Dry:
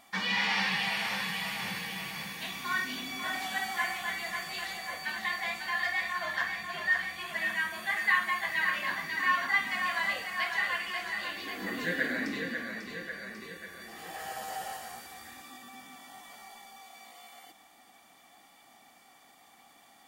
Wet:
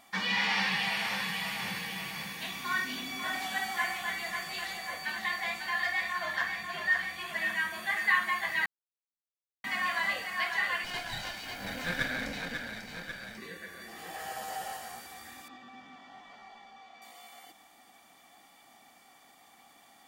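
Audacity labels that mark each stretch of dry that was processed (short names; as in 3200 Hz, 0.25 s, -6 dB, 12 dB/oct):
8.660000	9.640000	mute
10.840000	13.380000	minimum comb delay 1.3 ms
15.480000	17.020000	air absorption 180 m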